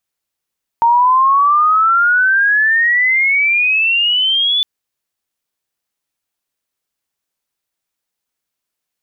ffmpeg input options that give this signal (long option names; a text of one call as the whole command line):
ffmpeg -f lavfi -i "aevalsrc='pow(10,(-7.5-4*t/3.81)/20)*sin(2*PI*920*3.81/log(3500/920)*(exp(log(3500/920)*t/3.81)-1))':duration=3.81:sample_rate=44100" out.wav